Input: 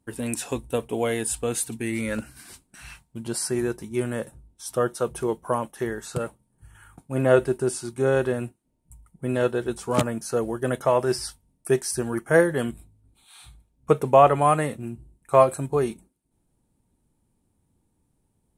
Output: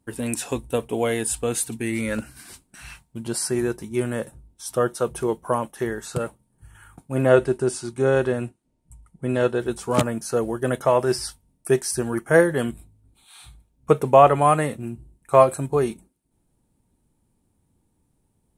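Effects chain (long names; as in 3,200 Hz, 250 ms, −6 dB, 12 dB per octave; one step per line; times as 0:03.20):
0:07.29–0:09.60: low-pass filter 9,400 Hz 12 dB per octave
level +2 dB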